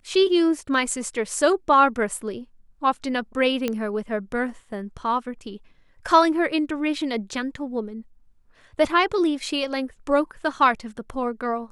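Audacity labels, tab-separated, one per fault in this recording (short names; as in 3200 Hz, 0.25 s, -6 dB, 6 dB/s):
3.680000	3.680000	pop -11 dBFS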